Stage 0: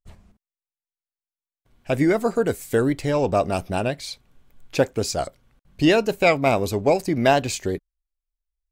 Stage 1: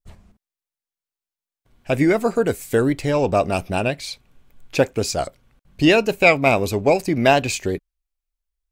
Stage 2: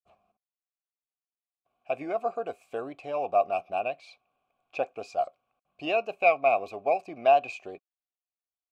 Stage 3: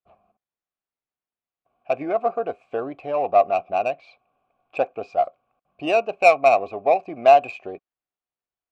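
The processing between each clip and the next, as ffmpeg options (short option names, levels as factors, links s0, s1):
-af "adynamicequalizer=threshold=0.00794:dfrequency=2500:dqfactor=4.5:tfrequency=2500:tqfactor=4.5:attack=5:release=100:ratio=0.375:range=3.5:mode=boostabove:tftype=bell,volume=1.26"
-filter_complex "[0:a]asplit=3[s0][s1][s2];[s0]bandpass=f=730:t=q:w=8,volume=1[s3];[s1]bandpass=f=1090:t=q:w=8,volume=0.501[s4];[s2]bandpass=f=2440:t=q:w=8,volume=0.355[s5];[s3][s4][s5]amix=inputs=3:normalize=0"
-af "adynamicsmooth=sensitivity=1.5:basefreq=2500,volume=2.37"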